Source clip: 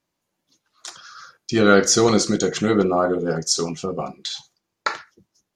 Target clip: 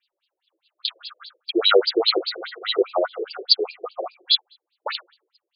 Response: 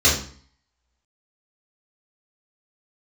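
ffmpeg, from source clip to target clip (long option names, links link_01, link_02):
-filter_complex "[0:a]aexciter=amount=5.6:drive=4.8:freq=2800,asplit=2[link_01][link_02];[1:a]atrim=start_sample=2205[link_03];[link_02][link_03]afir=irnorm=-1:irlink=0,volume=-34dB[link_04];[link_01][link_04]amix=inputs=2:normalize=0,afftfilt=real='re*between(b*sr/1024,430*pow(3600/430,0.5+0.5*sin(2*PI*4.9*pts/sr))/1.41,430*pow(3600/430,0.5+0.5*sin(2*PI*4.9*pts/sr))*1.41)':imag='im*between(b*sr/1024,430*pow(3600/430,0.5+0.5*sin(2*PI*4.9*pts/sr))/1.41,430*pow(3600/430,0.5+0.5*sin(2*PI*4.9*pts/sr))*1.41)':win_size=1024:overlap=0.75,volume=3dB"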